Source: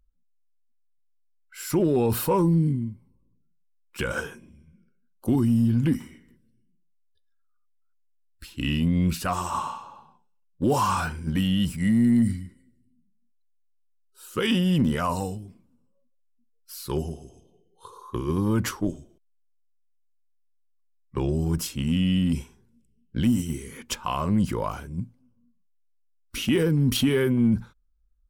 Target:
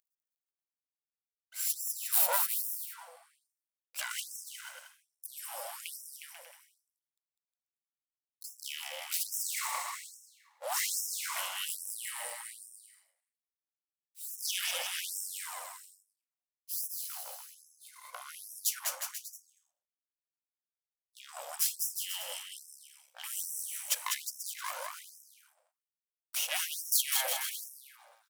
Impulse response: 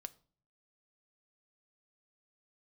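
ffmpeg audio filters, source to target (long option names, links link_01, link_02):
-filter_complex "[0:a]aeval=exprs='max(val(0),0)':channel_layout=same,crystalizer=i=3:c=0,asplit=2[link_01][link_02];[link_02]aecho=0:1:200|360|488|590.4|672.3:0.631|0.398|0.251|0.158|0.1[link_03];[link_01][link_03]amix=inputs=2:normalize=0,afftfilt=real='re*gte(b*sr/1024,490*pow(5300/490,0.5+0.5*sin(2*PI*1.2*pts/sr)))':imag='im*gte(b*sr/1024,490*pow(5300/490,0.5+0.5*sin(2*PI*1.2*pts/sr)))':win_size=1024:overlap=0.75,volume=-4dB"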